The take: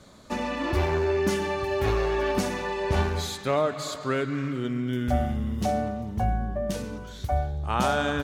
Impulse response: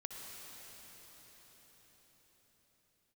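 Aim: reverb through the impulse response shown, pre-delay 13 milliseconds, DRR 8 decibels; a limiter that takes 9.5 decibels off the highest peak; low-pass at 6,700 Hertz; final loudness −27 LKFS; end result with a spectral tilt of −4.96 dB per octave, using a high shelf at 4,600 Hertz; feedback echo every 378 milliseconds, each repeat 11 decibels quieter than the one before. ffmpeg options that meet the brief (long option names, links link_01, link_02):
-filter_complex "[0:a]lowpass=6700,highshelf=frequency=4600:gain=5,alimiter=limit=-19.5dB:level=0:latency=1,aecho=1:1:378|756|1134:0.282|0.0789|0.0221,asplit=2[link_01][link_02];[1:a]atrim=start_sample=2205,adelay=13[link_03];[link_02][link_03]afir=irnorm=-1:irlink=0,volume=-6.5dB[link_04];[link_01][link_04]amix=inputs=2:normalize=0,volume=1.5dB"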